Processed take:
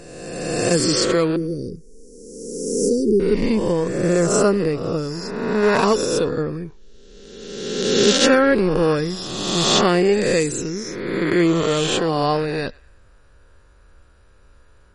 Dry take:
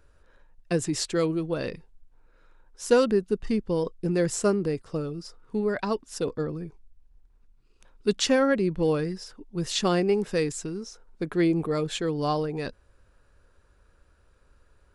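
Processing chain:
peak hold with a rise ahead of every peak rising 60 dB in 1.64 s
0:01.36–0:03.20: Chebyshev band-stop filter 420–5,500 Hz, order 4
0:03.71–0:04.30: high-shelf EQ 3,600 Hz → 2,000 Hz −8 dB
0:05.63–0:06.05: leveller curve on the samples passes 1
feedback echo with a band-pass in the loop 108 ms, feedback 42%, band-pass 1,900 Hz, level −23 dB
boost into a limiter +5.5 dB
MP3 40 kbit/s 48,000 Hz

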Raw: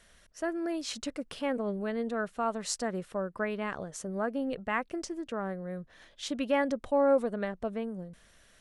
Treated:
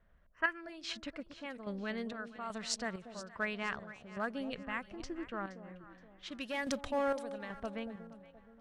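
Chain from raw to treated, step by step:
0:06.28–0:06.91: leveller curve on the samples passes 1
low-pass that shuts in the quiet parts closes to 850 Hz, open at −24.5 dBFS
square-wave tremolo 1.2 Hz, depth 60%, duty 55%
in parallel at −11 dB: hard clipping −24 dBFS, distortion −13 dB
0:04.67–0:05.25: on the sum: low-shelf EQ 260 Hz +11.5 dB
on a send: delay that swaps between a low-pass and a high-pass 236 ms, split 810 Hz, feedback 63%, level −10.5 dB
0:00.33–0:00.61: on the sum: gain on a spectral selection 940–3,200 Hz +12 dB
guitar amp tone stack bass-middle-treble 5-5-5
one half of a high-frequency compander decoder only
level +9.5 dB

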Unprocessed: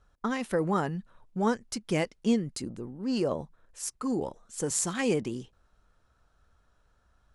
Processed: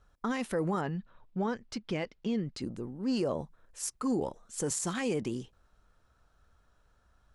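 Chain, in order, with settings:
brickwall limiter −22 dBFS, peak gain reduction 10 dB
0:00.81–0:02.62: Chebyshev low-pass filter 3,700 Hz, order 2

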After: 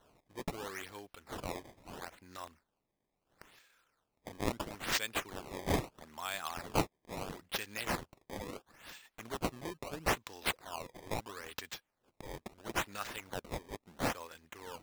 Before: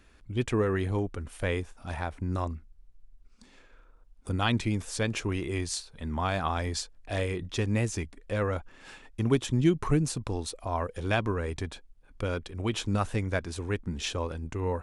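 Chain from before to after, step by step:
first difference
sample-and-hold swept by an LFO 18×, swing 160% 0.75 Hz
level +6 dB

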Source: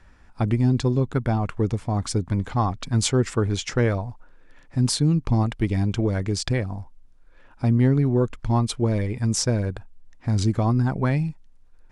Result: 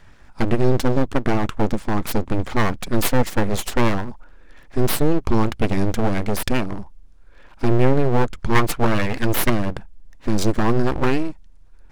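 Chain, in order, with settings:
0:08.55–0:09.50: parametric band 1,400 Hz +10.5 dB 1.7 octaves
full-wave rectification
level +6 dB

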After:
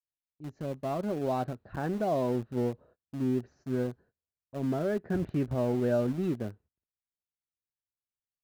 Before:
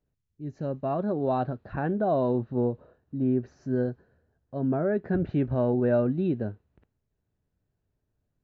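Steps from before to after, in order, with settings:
noise gate −52 dBFS, range −26 dB
in parallel at −5.5 dB: centre clipping without the shift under −29.5 dBFS
on the sum: level −7.5 dB

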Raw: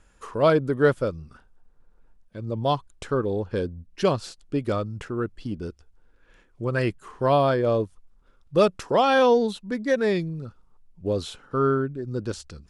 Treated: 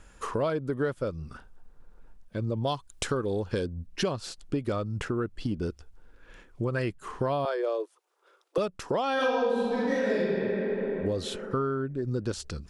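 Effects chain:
0:02.67–0:03.66: high-shelf EQ 3,100 Hz +10 dB
0:07.45–0:08.58: Butterworth high-pass 340 Hz 72 dB per octave
0:09.15–0:10.17: thrown reverb, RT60 2.1 s, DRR −12 dB
downward compressor 6 to 1, threshold −32 dBFS, peak gain reduction 26 dB
level +5.5 dB

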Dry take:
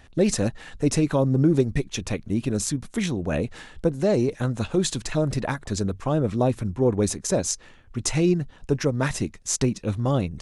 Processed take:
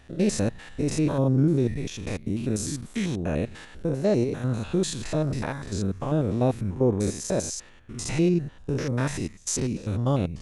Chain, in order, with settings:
spectrum averaged block by block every 100 ms

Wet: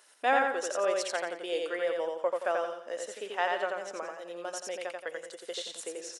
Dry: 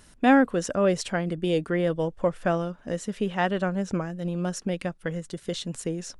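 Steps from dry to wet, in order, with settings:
high-pass filter 470 Hz 24 dB per octave
on a send: repeating echo 87 ms, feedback 37%, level −3 dB
on the sum: level −4 dB

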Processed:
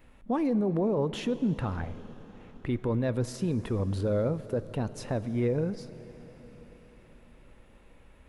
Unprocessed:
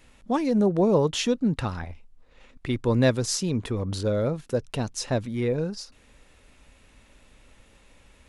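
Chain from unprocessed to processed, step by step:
brickwall limiter −20 dBFS, peak gain reduction 10.5 dB
parametric band 6,100 Hz −14.5 dB 2 octaves
dense smooth reverb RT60 4.9 s, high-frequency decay 0.95×, DRR 13.5 dB

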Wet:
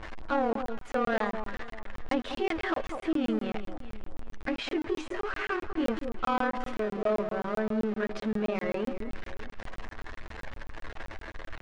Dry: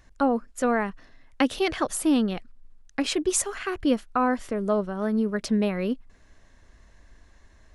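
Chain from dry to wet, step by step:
converter with a step at zero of −29 dBFS
de-essing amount 50%
low-pass filter 2,300 Hz 12 dB per octave
parametric band 120 Hz −14 dB 2 octaves
soft clipping −19 dBFS, distortion −16 dB
time stretch by overlap-add 1.5×, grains 55 ms
delay that swaps between a low-pass and a high-pass 197 ms, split 1,200 Hz, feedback 54%, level −8 dB
regular buffer underruns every 0.13 s, samples 1,024, zero, from 0:00.53

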